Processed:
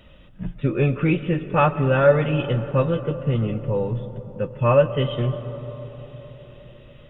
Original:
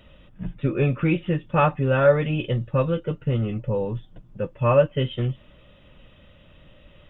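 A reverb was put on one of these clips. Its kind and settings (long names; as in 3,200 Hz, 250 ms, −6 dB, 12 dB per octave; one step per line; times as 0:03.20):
comb and all-pass reverb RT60 4.8 s, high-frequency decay 0.25×, pre-delay 80 ms, DRR 12.5 dB
level +1.5 dB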